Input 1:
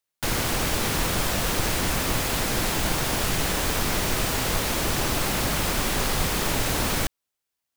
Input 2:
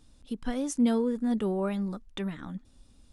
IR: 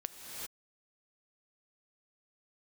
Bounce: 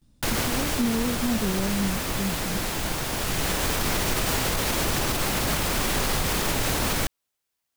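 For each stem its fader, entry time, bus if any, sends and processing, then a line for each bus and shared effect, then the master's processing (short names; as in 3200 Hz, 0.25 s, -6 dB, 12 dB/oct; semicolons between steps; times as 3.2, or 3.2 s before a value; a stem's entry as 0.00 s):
+2.5 dB, 0.00 s, no send, auto duck -6 dB, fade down 1.05 s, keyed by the second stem
-5.5 dB, 0.00 s, no send, gate with hold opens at -53 dBFS; bell 150 Hz +11.5 dB 1.8 oct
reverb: off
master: limiter -15 dBFS, peak gain reduction 7 dB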